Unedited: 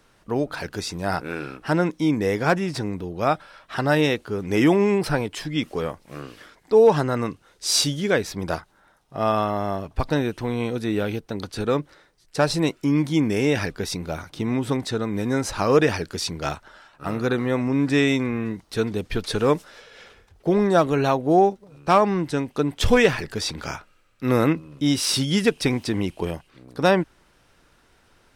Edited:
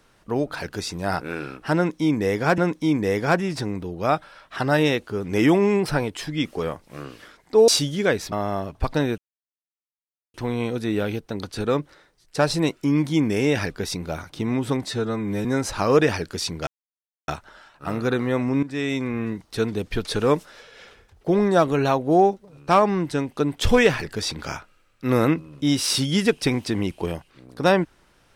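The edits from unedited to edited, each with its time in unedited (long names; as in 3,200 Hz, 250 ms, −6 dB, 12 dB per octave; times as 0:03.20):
0:01.76–0:02.58: repeat, 2 plays
0:06.86–0:07.73: remove
0:08.37–0:09.48: remove
0:10.34: splice in silence 1.16 s
0:14.85–0:15.25: time-stretch 1.5×
0:16.47: splice in silence 0.61 s
0:17.82–0:18.41: fade in, from −15 dB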